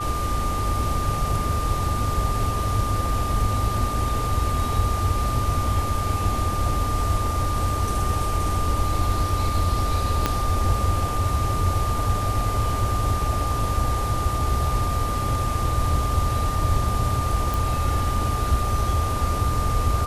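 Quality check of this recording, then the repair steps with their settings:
tone 1200 Hz -27 dBFS
10.26 pop -6 dBFS
17.54 pop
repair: de-click; notch 1200 Hz, Q 30

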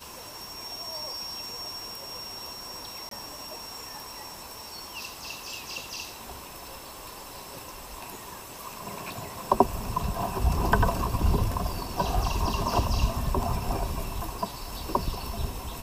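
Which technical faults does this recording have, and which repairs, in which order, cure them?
3.09–3.11 gap 23 ms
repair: interpolate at 3.09, 23 ms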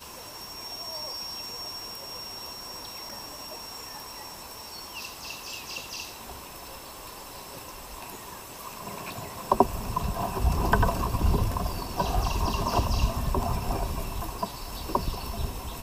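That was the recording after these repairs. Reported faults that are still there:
none

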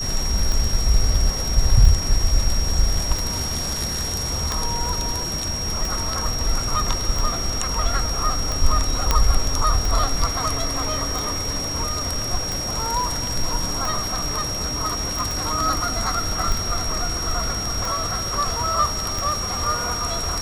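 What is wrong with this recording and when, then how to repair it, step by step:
tick 45 rpm
tone 5600 Hz -26 dBFS
9.11 pop -2 dBFS
15.31 pop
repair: de-click; notch 5600 Hz, Q 30

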